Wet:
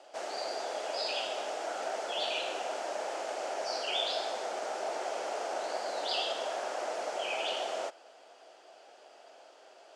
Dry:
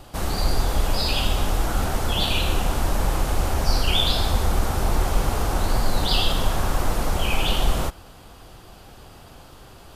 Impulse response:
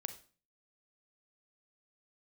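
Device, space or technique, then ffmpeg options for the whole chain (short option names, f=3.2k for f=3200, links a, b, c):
phone speaker on a table: -af "highpass=f=410:w=0.5412,highpass=f=410:w=1.3066,equalizer=f=640:t=q:w=4:g=9,equalizer=f=1.1k:t=q:w=4:g=-7,equalizer=f=3.8k:t=q:w=4:g=-5,lowpass=f=7.3k:w=0.5412,lowpass=f=7.3k:w=1.3066,volume=-8dB"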